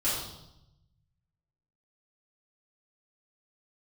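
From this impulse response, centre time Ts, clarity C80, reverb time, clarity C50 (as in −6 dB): 59 ms, 4.5 dB, 0.85 s, 1.5 dB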